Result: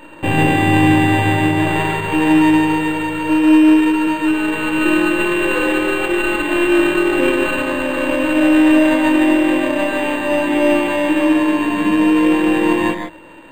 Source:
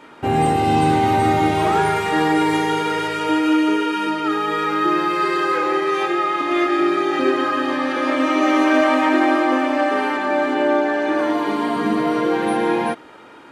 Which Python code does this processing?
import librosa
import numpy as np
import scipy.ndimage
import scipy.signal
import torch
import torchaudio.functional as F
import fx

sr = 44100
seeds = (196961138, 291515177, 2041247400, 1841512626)

p1 = np.r_[np.sort(x[:len(x) // 16 * 16].reshape(-1, 16), axis=1).ravel(), x[len(x) // 16 * 16:]]
p2 = fx.ripple_eq(p1, sr, per_octave=1.2, db=12)
p3 = p2 + fx.echo_single(p2, sr, ms=145, db=-5.0, dry=0)
p4 = fx.rider(p3, sr, range_db=10, speed_s=2.0)
p5 = np.interp(np.arange(len(p4)), np.arange(len(p4))[::8], p4[::8])
y = F.gain(torch.from_numpy(p5), -1.0).numpy()